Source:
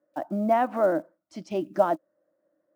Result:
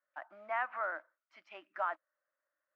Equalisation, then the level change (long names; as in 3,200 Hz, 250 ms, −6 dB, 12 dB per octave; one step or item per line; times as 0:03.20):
flat-topped band-pass 1,700 Hz, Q 1.3
0.0 dB